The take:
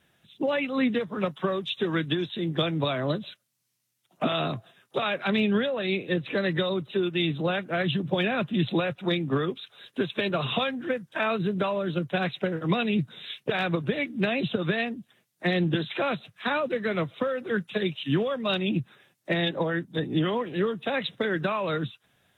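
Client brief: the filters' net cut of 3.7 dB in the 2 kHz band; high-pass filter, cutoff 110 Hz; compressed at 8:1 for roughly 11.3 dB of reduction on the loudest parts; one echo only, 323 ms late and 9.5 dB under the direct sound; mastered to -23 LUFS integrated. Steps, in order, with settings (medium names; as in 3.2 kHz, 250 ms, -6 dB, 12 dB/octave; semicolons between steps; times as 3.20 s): high-pass 110 Hz; peaking EQ 2 kHz -5 dB; compression 8:1, threshold -33 dBFS; delay 323 ms -9.5 dB; trim +14 dB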